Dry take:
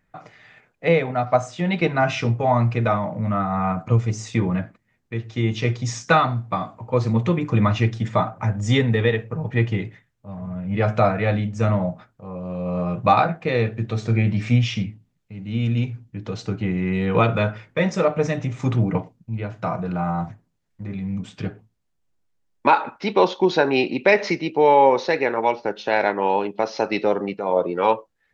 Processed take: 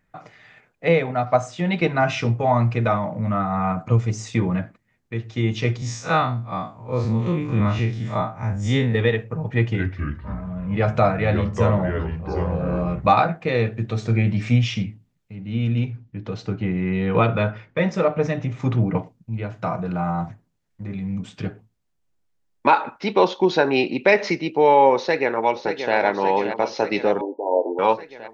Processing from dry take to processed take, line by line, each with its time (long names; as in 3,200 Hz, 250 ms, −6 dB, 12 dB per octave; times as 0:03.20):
0:05.77–0:08.95: spectrum smeared in time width 84 ms
0:09.53–0:13.10: delay with pitch and tempo change per echo 218 ms, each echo −4 semitones, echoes 3, each echo −6 dB
0:15.35–0:18.96: high-frequency loss of the air 100 metres
0:24.97–0:25.95: delay throw 580 ms, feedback 70%, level −8 dB
0:27.21–0:27.79: linear-phase brick-wall band-pass 240–1,000 Hz